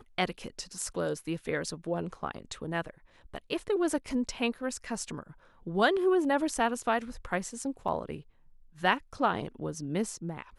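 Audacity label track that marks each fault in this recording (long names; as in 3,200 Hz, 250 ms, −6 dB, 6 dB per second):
7.880000	7.880000	drop-out 4 ms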